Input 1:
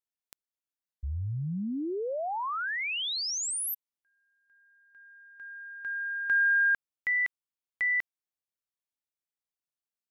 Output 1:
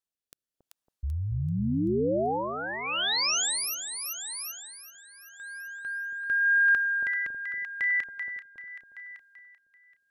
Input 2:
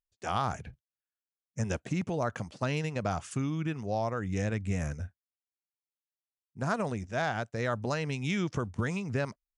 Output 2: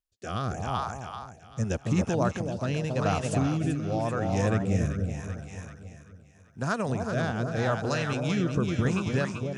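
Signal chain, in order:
parametric band 2,100 Hz −5.5 dB 0.3 octaves
echo with a time of its own for lows and highs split 790 Hz, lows 277 ms, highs 386 ms, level −4 dB
rotating-speaker cabinet horn 0.85 Hz
level +5 dB

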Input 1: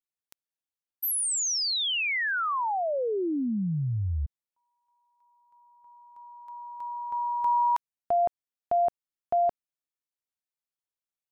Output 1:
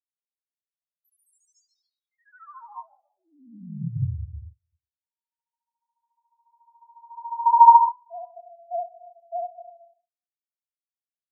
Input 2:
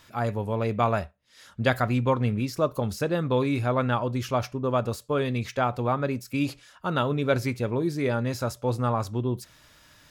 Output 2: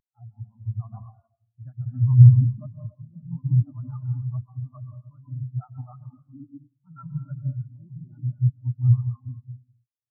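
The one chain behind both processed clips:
upward compression, threshold −31 dBFS
pitch vibrato 14 Hz 76 cents
phaser with its sweep stopped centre 1,100 Hz, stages 4
dense smooth reverb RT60 1.9 s, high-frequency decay 0.95×, pre-delay 110 ms, DRR −1 dB
boost into a limiter +13.5 dB
every bin expanded away from the loudest bin 4 to 1
level −1 dB

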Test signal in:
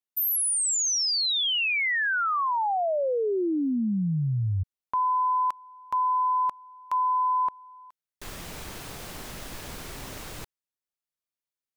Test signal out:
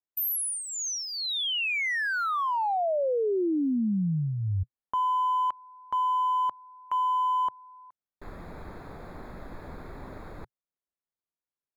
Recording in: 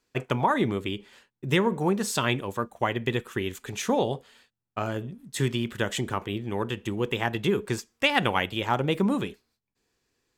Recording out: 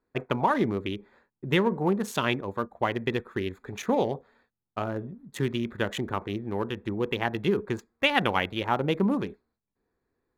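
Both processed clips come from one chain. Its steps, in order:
adaptive Wiener filter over 15 samples
thirty-one-band graphic EQ 125 Hz −5 dB, 5,000 Hz −7 dB, 8,000 Hz −10 dB

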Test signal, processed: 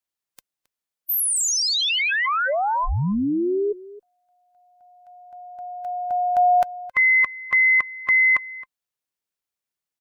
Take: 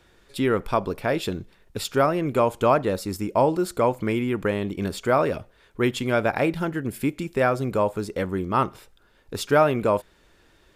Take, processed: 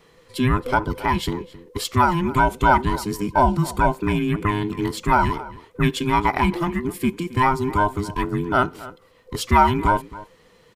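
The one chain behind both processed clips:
frequency inversion band by band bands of 500 Hz
slap from a distant wall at 46 metres, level −18 dB
level +3 dB

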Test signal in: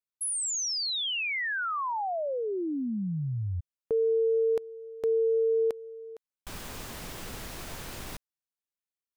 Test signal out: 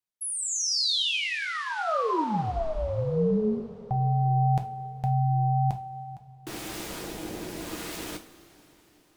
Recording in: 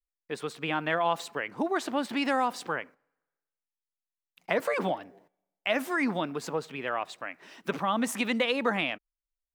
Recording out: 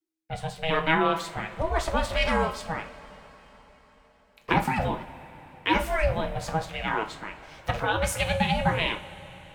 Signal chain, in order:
rotating-speaker cabinet horn 0.85 Hz
ring modulation 320 Hz
coupled-rooms reverb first 0.31 s, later 4.6 s, from −21 dB, DRR 4 dB
level +7 dB

